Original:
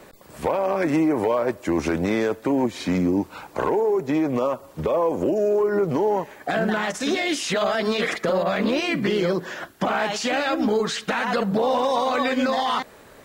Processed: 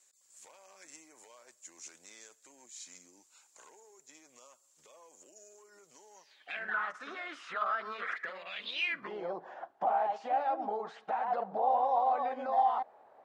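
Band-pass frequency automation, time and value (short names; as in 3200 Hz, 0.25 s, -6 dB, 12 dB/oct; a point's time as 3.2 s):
band-pass, Q 5.9
6.13 s 7100 Hz
6.78 s 1300 Hz
8.05 s 1300 Hz
8.72 s 3800 Hz
9.14 s 770 Hz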